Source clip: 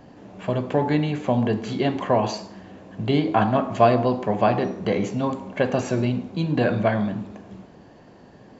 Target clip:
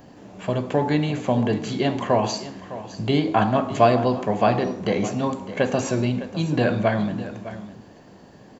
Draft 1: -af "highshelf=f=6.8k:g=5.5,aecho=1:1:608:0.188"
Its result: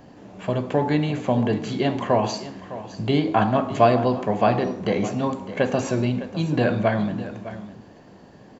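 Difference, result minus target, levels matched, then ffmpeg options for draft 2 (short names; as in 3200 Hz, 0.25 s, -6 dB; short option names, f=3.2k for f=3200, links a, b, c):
8000 Hz band -3.5 dB
-af "highshelf=f=6.8k:g=13,aecho=1:1:608:0.188"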